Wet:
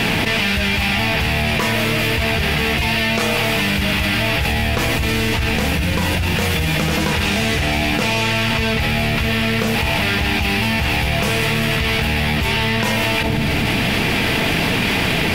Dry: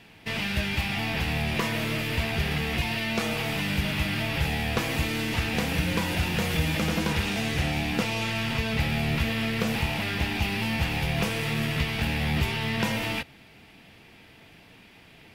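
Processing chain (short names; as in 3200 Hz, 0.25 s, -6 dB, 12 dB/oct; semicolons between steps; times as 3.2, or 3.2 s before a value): 4.52–6.36 low shelf 130 Hz +6.5 dB; on a send at -14 dB: Chebyshev low-pass 1000 Hz, order 8 + reverb RT60 1.0 s, pre-delay 3 ms; on the sum: dynamic EQ 200 Hz, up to -4 dB, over -41 dBFS, Q 0.97; fast leveller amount 100%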